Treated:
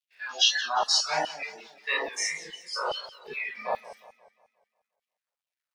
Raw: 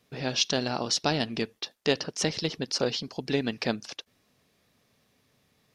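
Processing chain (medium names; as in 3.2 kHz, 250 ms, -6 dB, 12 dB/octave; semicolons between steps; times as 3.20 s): spectrogram pixelated in time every 100 ms; reverb removal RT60 1.9 s; simulated room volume 740 m³, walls furnished, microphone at 5.4 m; crackle 520 per s -40 dBFS; de-hum 45.45 Hz, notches 28; LFO high-pass saw down 2.4 Hz 760–3200 Hz; gate -46 dBFS, range -19 dB; spectral noise reduction 22 dB; modulated delay 178 ms, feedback 47%, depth 155 cents, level -16 dB; trim +2 dB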